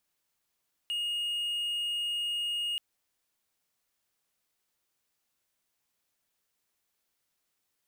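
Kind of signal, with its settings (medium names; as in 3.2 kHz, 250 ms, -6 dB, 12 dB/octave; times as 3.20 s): tone triangle 2.86 kHz -27.5 dBFS 1.88 s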